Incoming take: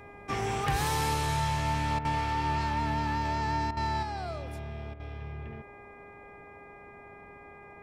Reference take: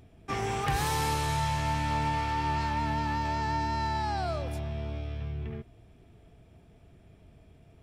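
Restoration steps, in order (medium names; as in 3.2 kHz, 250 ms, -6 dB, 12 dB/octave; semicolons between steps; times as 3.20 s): de-hum 406.3 Hz, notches 6; interpolate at 1.99/3.71/4.94 s, 57 ms; noise print and reduce 7 dB; trim 0 dB, from 4.03 s +5 dB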